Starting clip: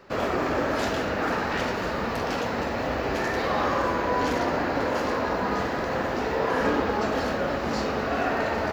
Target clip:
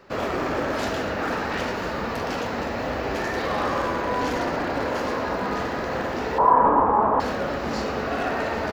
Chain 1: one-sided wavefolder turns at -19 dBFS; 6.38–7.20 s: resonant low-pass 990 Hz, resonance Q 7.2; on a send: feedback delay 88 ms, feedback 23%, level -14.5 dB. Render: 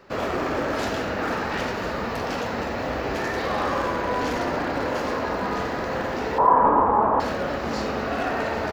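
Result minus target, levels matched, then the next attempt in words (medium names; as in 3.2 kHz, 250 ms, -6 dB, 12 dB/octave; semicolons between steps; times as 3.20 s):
echo 29 ms early
one-sided wavefolder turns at -19 dBFS; 6.38–7.20 s: resonant low-pass 990 Hz, resonance Q 7.2; on a send: feedback delay 117 ms, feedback 23%, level -14.5 dB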